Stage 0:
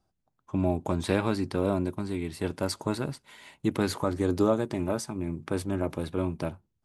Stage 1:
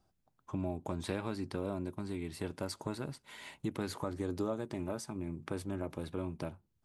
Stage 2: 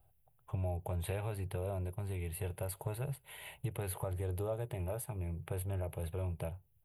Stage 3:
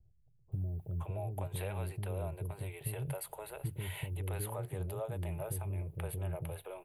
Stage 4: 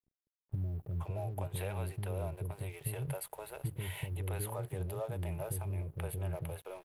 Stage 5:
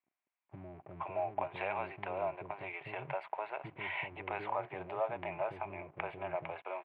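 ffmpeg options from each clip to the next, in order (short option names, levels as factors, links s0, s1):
-af "acompressor=threshold=0.00708:ratio=2,volume=1.12"
-filter_complex "[0:a]firequalizer=gain_entry='entry(130,0);entry(240,-27);entry(420,-7);entry(760,-5);entry(1100,-14);entry(2800,-5);entry(5400,-28);entry(11000,6)':delay=0.05:min_phase=1,asplit=2[s0][s1];[s1]alimiter=level_in=5.62:limit=0.0631:level=0:latency=1,volume=0.178,volume=0.891[s2];[s0][s2]amix=inputs=2:normalize=0,volume=1.33"
-filter_complex "[0:a]asplit=2[s0][s1];[s1]acompressor=threshold=0.00631:ratio=6,volume=1.12[s2];[s0][s2]amix=inputs=2:normalize=0,acrossover=split=380[s3][s4];[s4]adelay=520[s5];[s3][s5]amix=inputs=2:normalize=0,volume=0.75"
-af "aeval=exprs='sgn(val(0))*max(abs(val(0))-0.001,0)':c=same,volume=1.12"
-af "highpass=370,equalizer=f=470:t=q:w=4:g=-10,equalizer=f=710:t=q:w=4:g=6,equalizer=f=1000:t=q:w=4:g=6,equalizer=f=2300:t=q:w=4:g=8,lowpass=f=2600:w=0.5412,lowpass=f=2600:w=1.3066,volume=1.88"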